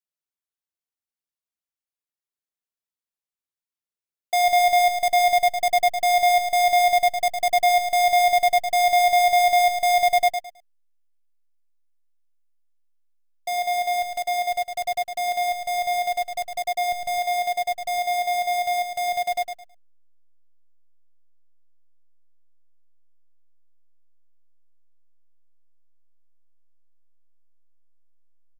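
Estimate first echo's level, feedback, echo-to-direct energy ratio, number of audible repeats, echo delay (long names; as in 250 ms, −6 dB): −7.0 dB, 24%, −6.5 dB, 3, 107 ms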